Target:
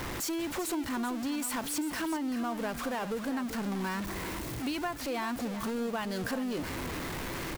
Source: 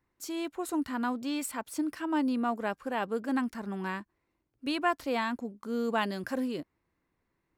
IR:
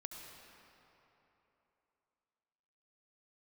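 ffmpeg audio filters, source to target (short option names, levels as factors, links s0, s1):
-af "aeval=exprs='val(0)+0.5*0.0299*sgn(val(0))':c=same,acompressor=threshold=0.0282:ratio=6,aecho=1:1:388:0.266"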